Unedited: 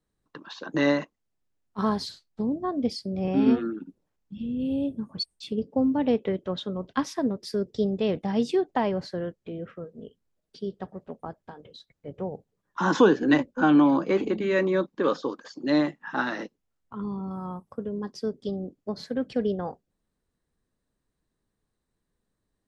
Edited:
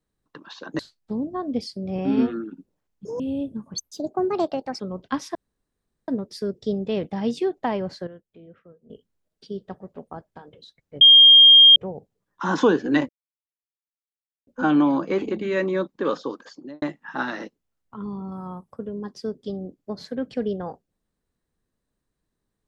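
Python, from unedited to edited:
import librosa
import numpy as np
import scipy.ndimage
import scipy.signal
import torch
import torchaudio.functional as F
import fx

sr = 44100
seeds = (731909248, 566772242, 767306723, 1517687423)

y = fx.studio_fade_out(x, sr, start_s=15.47, length_s=0.34)
y = fx.edit(y, sr, fx.cut(start_s=0.79, length_s=1.29),
    fx.speed_span(start_s=4.34, length_s=0.29, speed=1.95),
    fx.speed_span(start_s=5.21, length_s=1.44, speed=1.41),
    fx.insert_room_tone(at_s=7.2, length_s=0.73),
    fx.clip_gain(start_s=9.19, length_s=0.83, db=-11.5),
    fx.insert_tone(at_s=12.13, length_s=0.75, hz=3220.0, db=-7.0),
    fx.insert_silence(at_s=13.46, length_s=1.38), tone=tone)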